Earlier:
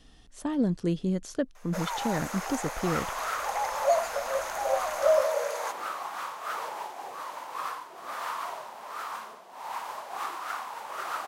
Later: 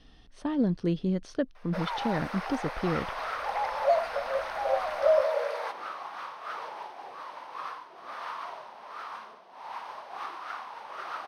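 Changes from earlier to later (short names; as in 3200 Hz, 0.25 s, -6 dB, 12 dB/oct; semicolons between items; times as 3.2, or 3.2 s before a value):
first sound: add bell 6500 Hz -10.5 dB 0.3 oct; second sound -3.5 dB; master: add polynomial smoothing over 15 samples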